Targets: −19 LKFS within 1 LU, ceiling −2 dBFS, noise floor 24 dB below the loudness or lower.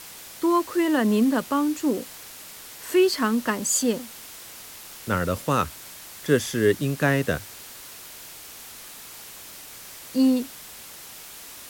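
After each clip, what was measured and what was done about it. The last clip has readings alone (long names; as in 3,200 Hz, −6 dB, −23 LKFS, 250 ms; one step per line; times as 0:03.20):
background noise floor −42 dBFS; target noise floor −48 dBFS; integrated loudness −23.5 LKFS; sample peak −7.0 dBFS; target loudness −19.0 LKFS
→ broadband denoise 6 dB, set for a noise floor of −42 dBFS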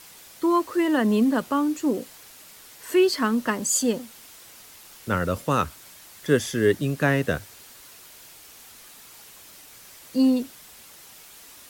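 background noise floor −48 dBFS; integrated loudness −23.5 LKFS; sample peak −7.0 dBFS; target loudness −19.0 LKFS
→ level +4.5 dB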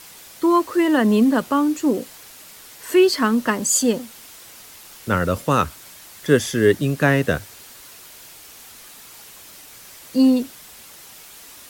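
integrated loudness −19.0 LKFS; sample peak −2.5 dBFS; background noise floor −43 dBFS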